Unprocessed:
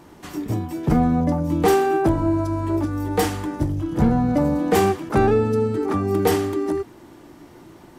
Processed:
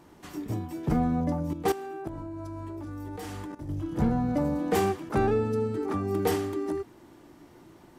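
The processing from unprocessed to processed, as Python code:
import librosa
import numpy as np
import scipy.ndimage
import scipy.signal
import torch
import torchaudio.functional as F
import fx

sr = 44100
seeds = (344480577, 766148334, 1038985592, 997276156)

y = fx.level_steps(x, sr, step_db=15, at=(1.53, 3.69))
y = F.gain(torch.from_numpy(y), -7.5).numpy()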